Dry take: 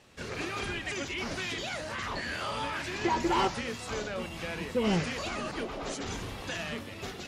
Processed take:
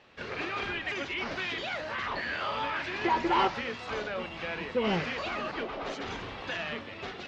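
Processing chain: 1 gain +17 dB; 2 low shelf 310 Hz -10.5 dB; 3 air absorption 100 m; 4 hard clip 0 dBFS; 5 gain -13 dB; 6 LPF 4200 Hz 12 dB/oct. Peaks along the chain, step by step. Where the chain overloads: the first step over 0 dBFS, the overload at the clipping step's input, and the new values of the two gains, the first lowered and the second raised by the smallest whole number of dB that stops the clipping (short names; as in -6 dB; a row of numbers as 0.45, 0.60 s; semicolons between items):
-0.5, -1.0, -2.0, -2.0, -15.0, -15.0 dBFS; no overload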